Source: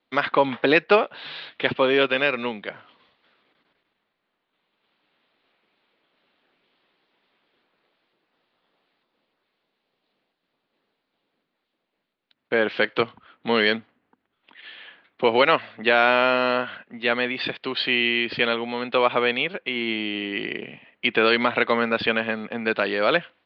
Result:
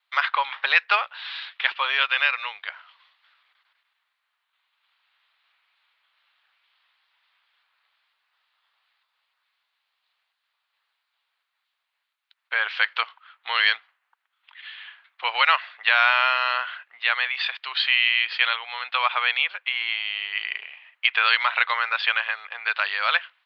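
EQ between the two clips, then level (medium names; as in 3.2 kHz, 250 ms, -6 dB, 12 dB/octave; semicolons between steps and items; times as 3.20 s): high-pass 1 kHz 24 dB/octave; +2.5 dB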